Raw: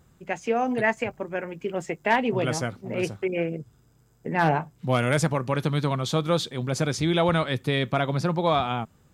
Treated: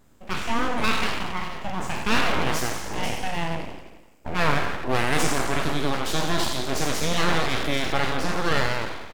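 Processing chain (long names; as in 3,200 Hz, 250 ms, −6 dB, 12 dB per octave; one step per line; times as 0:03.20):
peak hold with a decay on every bin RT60 1.18 s
repeating echo 85 ms, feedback 58%, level −11 dB
full-wave rectification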